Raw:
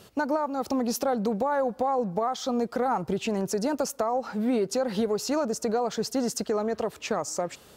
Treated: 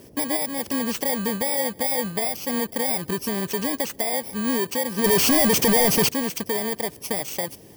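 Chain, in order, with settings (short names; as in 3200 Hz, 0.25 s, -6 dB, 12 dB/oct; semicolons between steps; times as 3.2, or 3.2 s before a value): FFT order left unsorted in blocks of 32 samples; band noise 60–500 Hz -51 dBFS; 5.04–6.09 sample leveller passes 5; gain +1.5 dB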